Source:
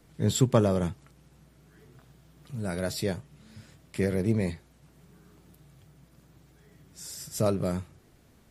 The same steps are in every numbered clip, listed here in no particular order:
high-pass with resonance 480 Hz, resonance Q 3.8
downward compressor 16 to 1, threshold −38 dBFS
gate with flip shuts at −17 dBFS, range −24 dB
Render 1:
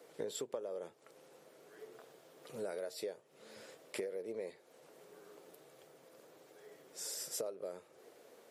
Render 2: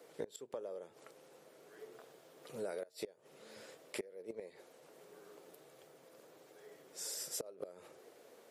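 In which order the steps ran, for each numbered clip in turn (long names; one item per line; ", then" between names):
high-pass with resonance, then downward compressor, then gate with flip
high-pass with resonance, then gate with flip, then downward compressor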